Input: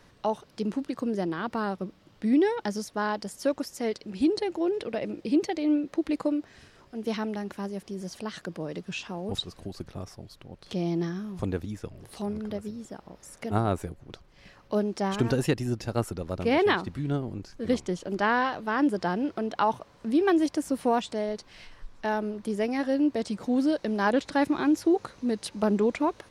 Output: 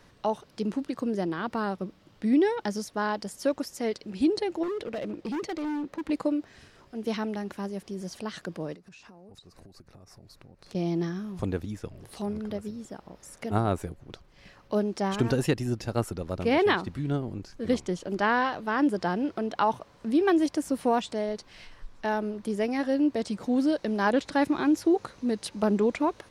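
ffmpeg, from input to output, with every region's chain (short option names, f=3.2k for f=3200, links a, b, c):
-filter_complex "[0:a]asettb=1/sr,asplit=3[a][b][c];[a]atrim=end=4.634[d];[b]atrim=start=4.63:end=6.1,asetpts=PTS-STARTPTS,afade=t=in:d=0.004:c=qsin,afade=t=out:st=1.466:d=0.004:c=qsin,highshelf=f=4.9k:g=-6,volume=29dB,asoftclip=hard,volume=-29dB[e];[c]atrim=start=6.096[f];[d][e]acrossfade=d=0.004:c1=hsin:c2=qsin[g];[g][f]acrossfade=d=0.004:c1=qsin:c2=hsin,asettb=1/sr,asplit=3[h][i][j];[h]atrim=end=8.744[k];[i]atrim=start=8.74:end=10.75,asetpts=PTS-STARTPTS,afade=t=in:d=0.004:c=qsin,afade=t=out:st=2.006:d=0.004:c=qsin,equalizer=f=3.2k:w=5:g=-11,acompressor=threshold=-47dB:ratio=16:attack=3.2:release=140:knee=1:detection=peak[l];[j]atrim=start=10.746[m];[k][l]acrossfade=d=0.004:c1=hsin:c2=qsin[n];[n][m]acrossfade=d=0.004:c1=qsin:c2=hsin"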